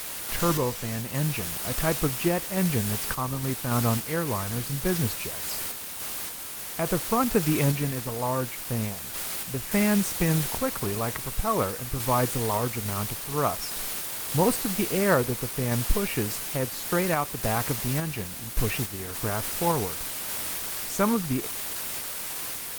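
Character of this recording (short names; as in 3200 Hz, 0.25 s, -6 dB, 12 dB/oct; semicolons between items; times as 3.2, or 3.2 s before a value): a quantiser's noise floor 6-bit, dither triangular; random-step tremolo; Opus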